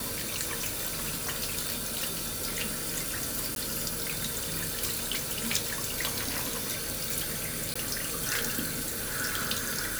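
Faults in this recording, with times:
0:03.55–0:03.56: drop-out 12 ms
0:07.74–0:07.75: drop-out 15 ms

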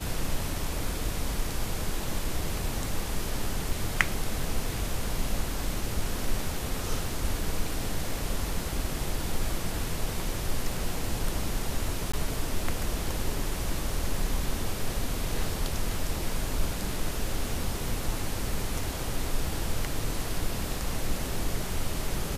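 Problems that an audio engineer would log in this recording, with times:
0:12.12–0:12.13: drop-out 15 ms

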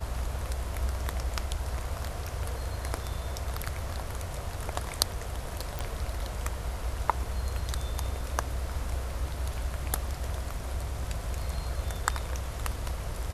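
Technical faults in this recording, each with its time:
0:05.79: click

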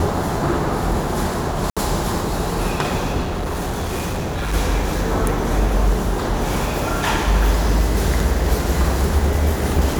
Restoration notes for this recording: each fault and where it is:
0:01.70–0:01.77: drop-out 66 ms
0:03.22–0:04.54: clipping −19.5 dBFS

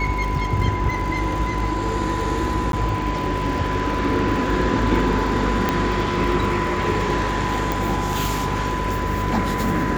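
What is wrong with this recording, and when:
mains buzz 50 Hz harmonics 9 −27 dBFS
surface crackle 80 per second −29 dBFS
whistle 1,000 Hz −26 dBFS
0:02.72–0:02.73: drop-out 12 ms
0:05.69: click −5 dBFS
0:07.72: click

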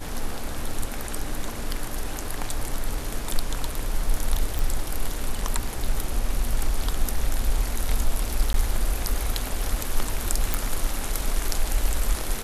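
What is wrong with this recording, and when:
0:04.59: click
0:08.53–0:08.54: drop-out 12 ms
0:10.54: click

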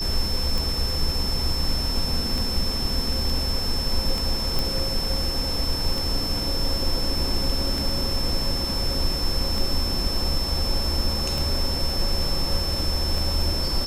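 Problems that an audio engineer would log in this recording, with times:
scratch tick 33 1/3 rpm
whistle 5,300 Hz −27 dBFS
0:04.59: click

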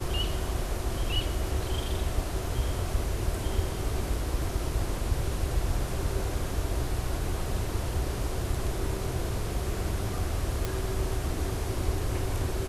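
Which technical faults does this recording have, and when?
0:10.65: click

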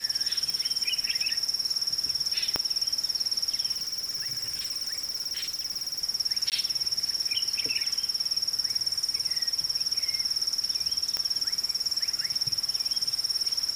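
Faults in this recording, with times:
0:00.50: click
0:02.56: click −10 dBFS
0:03.71–0:06.00: clipping −28 dBFS
0:06.50–0:06.52: drop-out 18 ms
0:11.17: click −14 dBFS

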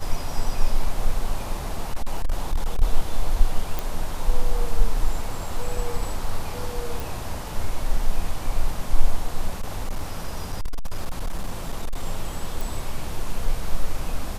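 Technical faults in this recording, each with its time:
0:01.83–0:02.83: clipping −16.5 dBFS
0:03.79: click
0:07.00: click
0:09.61–0:12.02: clipping −20.5 dBFS
0:12.61: click

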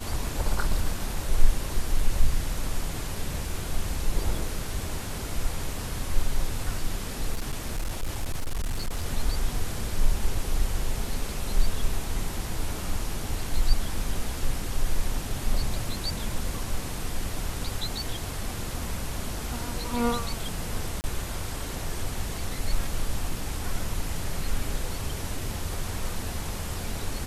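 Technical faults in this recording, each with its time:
0:07.33–0:09.06: clipping −24 dBFS
0:21.01–0:21.04: drop-out 29 ms

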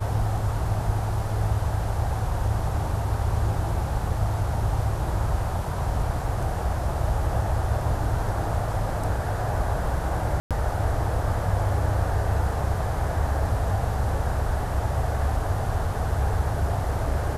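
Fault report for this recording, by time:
0:10.40–0:10.51: drop-out 107 ms

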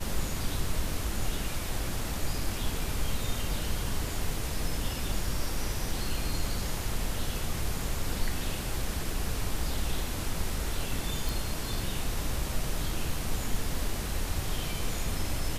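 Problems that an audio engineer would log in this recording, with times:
0:11.29: click

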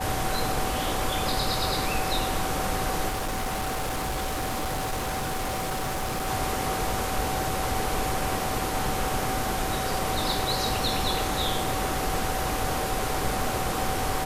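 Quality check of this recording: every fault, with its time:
whistle 760 Hz −32 dBFS
0:03.08–0:06.28: clipping −25.5 dBFS

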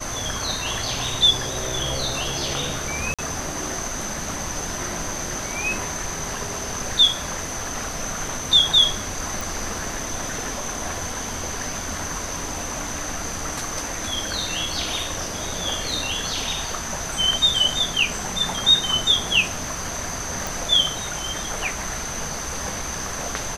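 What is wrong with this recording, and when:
0:03.14–0:03.19: drop-out 46 ms
0:09.41: click
0:20.47: click

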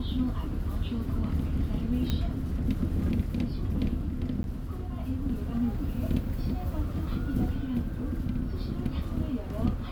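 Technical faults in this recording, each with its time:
0:02.10: click −16 dBFS
0:04.43–0:04.44: drop-out 11 ms

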